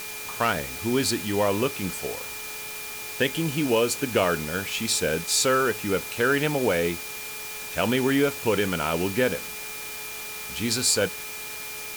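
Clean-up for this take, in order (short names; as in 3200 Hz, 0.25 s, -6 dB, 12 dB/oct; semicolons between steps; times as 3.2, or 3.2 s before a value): clip repair -11.5 dBFS; de-hum 427.9 Hz, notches 16; notch 2400 Hz, Q 30; noise print and reduce 30 dB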